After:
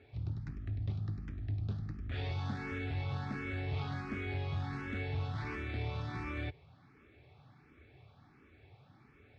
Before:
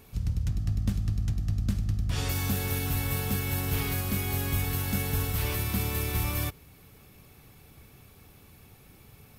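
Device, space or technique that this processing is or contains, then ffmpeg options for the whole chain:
barber-pole phaser into a guitar amplifier: -filter_complex "[0:a]asplit=2[a][b];[b]afreqshift=1.4[c];[a][c]amix=inputs=2:normalize=1,asoftclip=type=tanh:threshold=-25dB,highpass=93,equalizer=f=190:t=q:w=4:g=-10,equalizer=f=490:t=q:w=4:g=-5,equalizer=f=1k:t=q:w=4:g=-4,equalizer=f=2.9k:t=q:w=4:g=-9,lowpass=f=3.4k:w=0.5412,lowpass=f=3.4k:w=1.3066"

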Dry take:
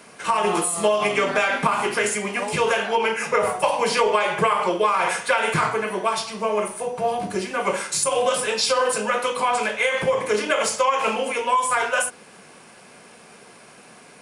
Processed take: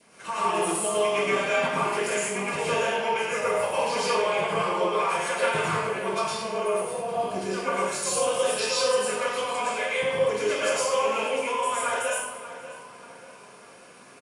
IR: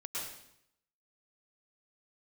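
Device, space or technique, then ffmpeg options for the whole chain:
bathroom: -filter_complex "[0:a]asettb=1/sr,asplit=3[a][b][c];[a]atrim=end=9.814[d];[b]atrim=start=9.81:end=10.28,asetpts=PTS-STARTPTS,afade=t=in:d=0.004:c=qsin,afade=t=out:st=0.466:d=0.004:c=qsin,bandreject=f=6.5k:w=6.8[e];[c]atrim=start=10.276[f];[d][e]acrossfade=d=0.004:c1=hsin:c2=qsin[g];[g][f]acrossfade=d=0.004:c1=qsin:c2=hsin,adynamicequalizer=threshold=0.0178:dfrequency=1300:dqfactor=1.6:tfrequency=1300:tqfactor=1.6:attack=5:release=100:ratio=0.375:range=2.5:mode=cutabove:tftype=bell,asplit=2[h][i];[i]adelay=45,volume=-11.5dB[j];[h][j]amix=inputs=2:normalize=0[k];[1:a]atrim=start_sample=2205[l];[k][l]afir=irnorm=-1:irlink=0,asplit=2[m][n];[n]adelay=588,lowpass=f=3k:p=1,volume=-13dB,asplit=2[o][p];[p]adelay=588,lowpass=f=3k:p=1,volume=0.46,asplit=2[q][r];[r]adelay=588,lowpass=f=3k:p=1,volume=0.46,asplit=2[s][t];[t]adelay=588,lowpass=f=3k:p=1,volume=0.46,asplit=2[u][v];[v]adelay=588,lowpass=f=3k:p=1,volume=0.46[w];[m][o][q][s][u][w]amix=inputs=6:normalize=0,volume=-5dB"

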